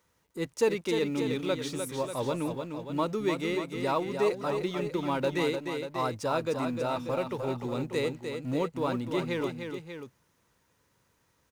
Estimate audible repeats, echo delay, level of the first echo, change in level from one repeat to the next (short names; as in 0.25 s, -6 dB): 2, 0.302 s, -6.5 dB, no steady repeat